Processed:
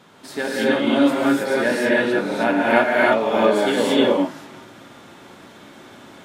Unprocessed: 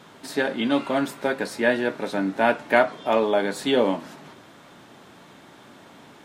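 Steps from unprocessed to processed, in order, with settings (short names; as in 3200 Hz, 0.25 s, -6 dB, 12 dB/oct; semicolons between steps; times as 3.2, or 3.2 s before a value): non-linear reverb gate 0.34 s rising, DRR -6.5 dB; gain -2.5 dB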